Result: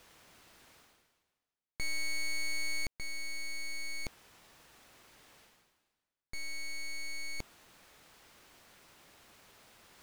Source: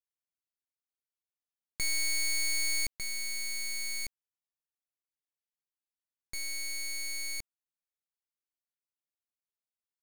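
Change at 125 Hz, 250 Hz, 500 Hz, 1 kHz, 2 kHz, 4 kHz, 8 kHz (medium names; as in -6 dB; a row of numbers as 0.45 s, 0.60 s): +1.5 dB, +2.0 dB, +2.5 dB, +2.5 dB, -2.5 dB, -6.0 dB, -10.0 dB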